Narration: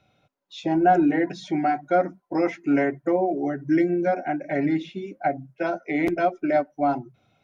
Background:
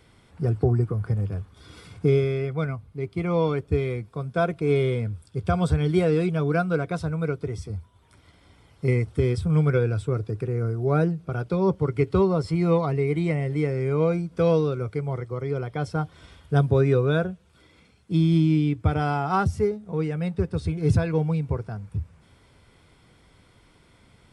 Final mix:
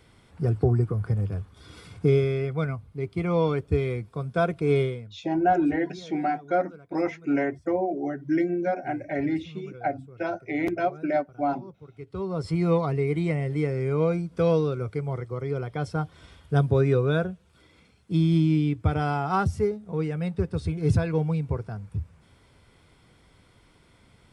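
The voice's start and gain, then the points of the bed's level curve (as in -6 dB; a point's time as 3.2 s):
4.60 s, -3.5 dB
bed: 4.81 s -0.5 dB
5.19 s -23 dB
11.91 s -23 dB
12.48 s -1.5 dB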